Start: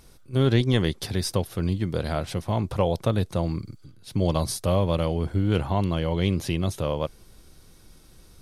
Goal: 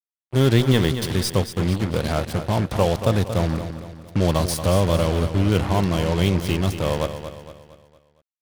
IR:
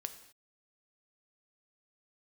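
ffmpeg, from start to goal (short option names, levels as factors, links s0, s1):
-af "acrusher=bits=4:mix=0:aa=0.5,aecho=1:1:230|460|690|920|1150:0.316|0.142|0.064|0.0288|0.013,volume=1.5"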